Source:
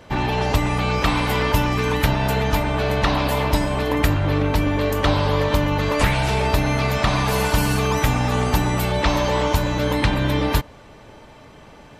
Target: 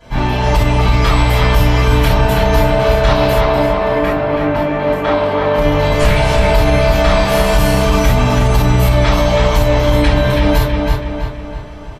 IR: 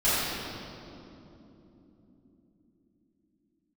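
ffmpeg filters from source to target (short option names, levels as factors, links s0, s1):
-filter_complex "[0:a]asettb=1/sr,asplit=3[s0][s1][s2];[s0]atrim=end=3.334[s3];[s1]atrim=start=3.33:end=5.58,asetpts=PTS-STARTPTS,afade=t=in:d=0.004:c=qsin,afade=t=out:st=2.246:d=0.004:c=qsin,acrossover=split=170 2700:gain=0.126 1 0.178[s4][s5][s6];[s4][s5][s6]amix=inputs=3:normalize=0[s7];[s2]atrim=start=5.576[s8];[s3][s7]acrossfade=d=0.004:c1=hsin:c2=qsin[s9];[s9][s8]acrossfade=d=0.004:c1=qsin:c2=hsin,asplit=2[s10][s11];[s11]adelay=326,lowpass=f=4100:p=1,volume=0.631,asplit=2[s12][s13];[s13]adelay=326,lowpass=f=4100:p=1,volume=0.52,asplit=2[s14][s15];[s15]adelay=326,lowpass=f=4100:p=1,volume=0.52,asplit=2[s16][s17];[s17]adelay=326,lowpass=f=4100:p=1,volume=0.52,asplit=2[s18][s19];[s19]adelay=326,lowpass=f=4100:p=1,volume=0.52,asplit=2[s20][s21];[s21]adelay=326,lowpass=f=4100:p=1,volume=0.52,asplit=2[s22][s23];[s23]adelay=326,lowpass=f=4100:p=1,volume=0.52[s24];[s10][s12][s14][s16][s18][s20][s22][s24]amix=inputs=8:normalize=0[s25];[1:a]atrim=start_sample=2205,atrim=end_sample=3528[s26];[s25][s26]afir=irnorm=-1:irlink=0,alimiter=level_in=0.596:limit=0.891:release=50:level=0:latency=1,volume=0.891"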